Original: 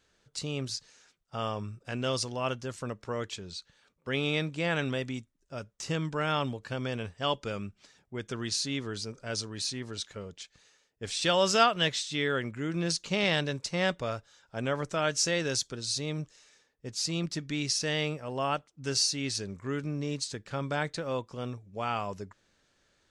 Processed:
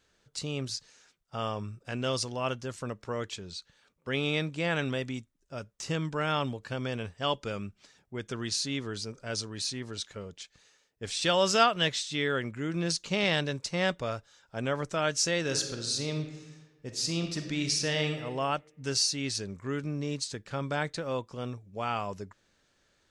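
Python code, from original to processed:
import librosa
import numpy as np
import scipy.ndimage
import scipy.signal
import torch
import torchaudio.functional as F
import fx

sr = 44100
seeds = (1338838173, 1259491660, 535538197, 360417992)

y = fx.reverb_throw(x, sr, start_s=15.4, length_s=2.78, rt60_s=1.3, drr_db=5.0)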